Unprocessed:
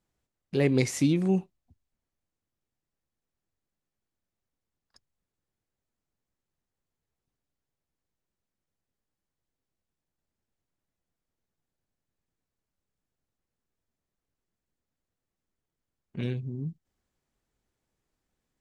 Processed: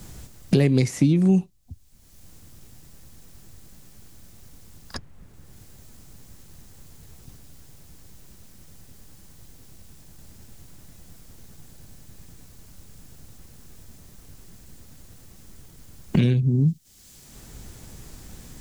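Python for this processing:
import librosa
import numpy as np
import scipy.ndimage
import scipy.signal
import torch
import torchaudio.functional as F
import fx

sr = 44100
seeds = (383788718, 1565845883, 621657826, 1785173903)

y = fx.bass_treble(x, sr, bass_db=10, treble_db=8)
y = fx.band_squash(y, sr, depth_pct=100)
y = y * librosa.db_to_amplitude(2.0)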